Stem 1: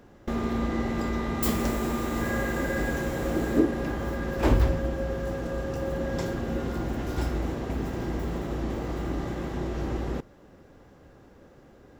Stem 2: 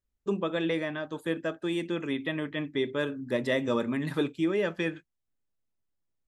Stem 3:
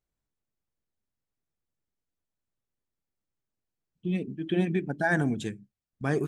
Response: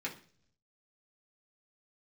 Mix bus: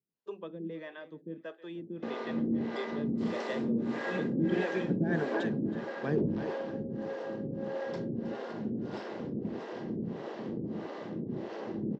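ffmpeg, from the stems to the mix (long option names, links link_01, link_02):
-filter_complex "[0:a]asoftclip=type=hard:threshold=-21dB,tremolo=f=270:d=0.71,adelay=1750,volume=1.5dB,asplit=2[link_01][link_02];[link_02]volume=-11.5dB[link_03];[1:a]volume=-7dB,asplit=2[link_04][link_05];[link_05]volume=-18dB[link_06];[2:a]volume=0.5dB,asplit=2[link_07][link_08];[link_08]volume=-9.5dB[link_09];[link_03][link_06][link_09]amix=inputs=3:normalize=0,aecho=0:1:318|636|954|1272|1590:1|0.37|0.137|0.0507|0.0187[link_10];[link_01][link_04][link_07][link_10]amix=inputs=4:normalize=0,equalizer=frequency=860:width=1.6:gain=-3.5,acrossover=split=410[link_11][link_12];[link_11]aeval=exprs='val(0)*(1-1/2+1/2*cos(2*PI*1.6*n/s))':channel_layout=same[link_13];[link_12]aeval=exprs='val(0)*(1-1/2-1/2*cos(2*PI*1.6*n/s))':channel_layout=same[link_14];[link_13][link_14]amix=inputs=2:normalize=0,highpass=frequency=130:width=0.5412,highpass=frequency=130:width=1.3066,equalizer=frequency=210:width_type=q:width=4:gain=5,equalizer=frequency=440:width_type=q:width=4:gain=5,equalizer=frequency=940:width_type=q:width=4:gain=3,equalizer=frequency=1300:width_type=q:width=4:gain=-5,equalizer=frequency=2300:width_type=q:width=4:gain=-5,equalizer=frequency=3600:width_type=q:width=4:gain=-3,lowpass=frequency=4700:width=0.5412,lowpass=frequency=4700:width=1.3066"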